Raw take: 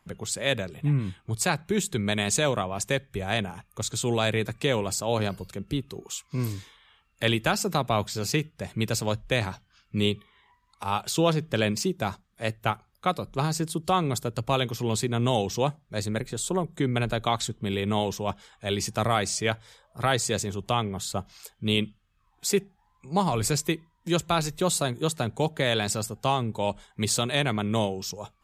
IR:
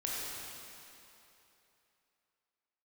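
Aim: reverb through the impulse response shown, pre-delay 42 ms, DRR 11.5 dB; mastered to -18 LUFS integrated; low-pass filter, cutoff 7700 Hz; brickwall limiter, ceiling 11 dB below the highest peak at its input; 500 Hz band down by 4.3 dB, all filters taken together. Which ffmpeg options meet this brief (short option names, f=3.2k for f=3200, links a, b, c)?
-filter_complex "[0:a]lowpass=7.7k,equalizer=f=500:t=o:g=-5.5,alimiter=limit=-21dB:level=0:latency=1,asplit=2[a][b];[1:a]atrim=start_sample=2205,adelay=42[c];[b][c]afir=irnorm=-1:irlink=0,volume=-15.5dB[d];[a][d]amix=inputs=2:normalize=0,volume=14.5dB"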